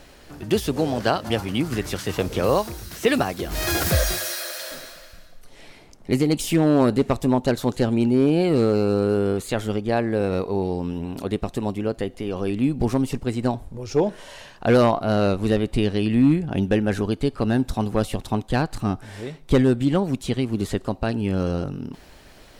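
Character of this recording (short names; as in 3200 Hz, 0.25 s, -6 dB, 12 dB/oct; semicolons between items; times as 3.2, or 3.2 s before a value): noise floor -48 dBFS; spectral tilt -6.0 dB/oct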